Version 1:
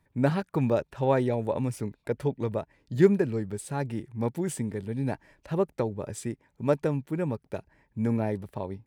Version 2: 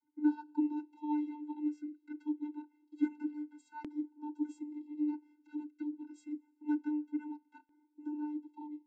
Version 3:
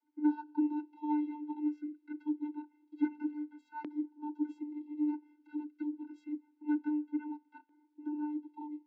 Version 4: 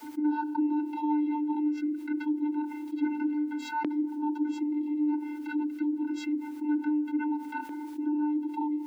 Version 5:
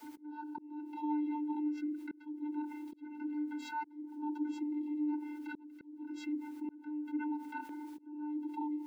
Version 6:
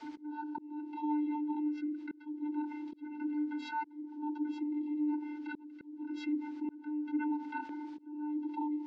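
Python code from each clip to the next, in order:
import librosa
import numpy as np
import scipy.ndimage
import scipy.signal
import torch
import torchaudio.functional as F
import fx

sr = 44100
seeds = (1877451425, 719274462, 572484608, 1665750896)

y1 = fx.rev_double_slope(x, sr, seeds[0], early_s=0.21, late_s=1.9, knee_db=-19, drr_db=17.5)
y1 = fx.vocoder(y1, sr, bands=32, carrier='square', carrier_hz=299.0)
y1 = fx.filter_lfo_notch(y1, sr, shape='saw_down', hz=0.26, low_hz=290.0, high_hz=2700.0, q=1.4)
y1 = F.gain(torch.from_numpy(y1), -8.0).numpy()
y2 = scipy.signal.sosfilt(scipy.signal.butter(2, 270.0, 'highpass', fs=sr, output='sos'), y1)
y2 = fx.air_absorb(y2, sr, metres=230.0)
y2 = 10.0 ** (-24.0 / 20.0) * np.tanh(y2 / 10.0 ** (-24.0 / 20.0))
y2 = F.gain(torch.from_numpy(y2), 4.5).numpy()
y3 = fx.env_flatten(y2, sr, amount_pct=70)
y4 = fx.auto_swell(y3, sr, attack_ms=477.0)
y4 = F.gain(torch.from_numpy(y4), -7.0).numpy()
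y5 = scipy.signal.sosfilt(scipy.signal.butter(4, 5200.0, 'lowpass', fs=sr, output='sos'), y4)
y5 = fx.rider(y5, sr, range_db=4, speed_s=2.0)
y5 = F.gain(torch.from_numpy(y5), 1.5).numpy()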